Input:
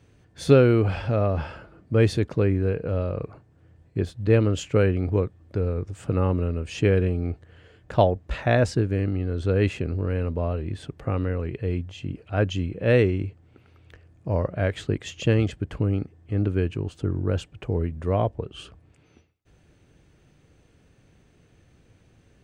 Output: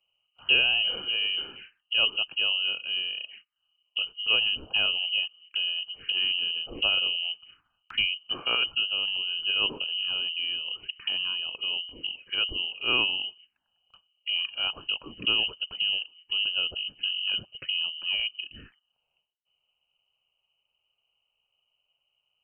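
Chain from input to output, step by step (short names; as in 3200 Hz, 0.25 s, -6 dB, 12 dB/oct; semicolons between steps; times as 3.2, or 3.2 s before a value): inverted band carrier 3000 Hz; gate -47 dBFS, range -15 dB; envelope phaser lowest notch 290 Hz, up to 2000 Hz, full sweep at -26.5 dBFS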